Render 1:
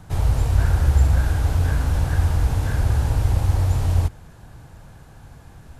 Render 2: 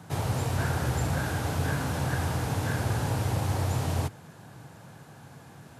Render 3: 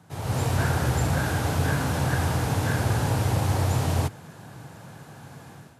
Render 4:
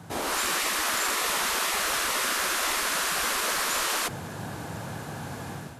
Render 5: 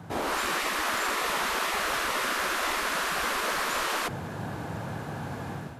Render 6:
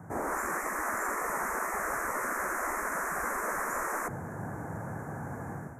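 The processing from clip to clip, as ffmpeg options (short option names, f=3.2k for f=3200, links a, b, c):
-af "highpass=f=120:w=0.5412,highpass=f=120:w=1.3066"
-af "dynaudnorm=f=110:g=5:m=11.5dB,volume=-7dB"
-af "afftfilt=real='re*lt(hypot(re,im),0.0708)':imag='im*lt(hypot(re,im),0.0708)':win_size=1024:overlap=0.75,volume=9dB"
-af "equalizer=f=9.6k:w=0.36:g=-10,volume=1.5dB"
-af "asuperstop=centerf=3600:order=8:qfactor=0.82,volume=-3dB"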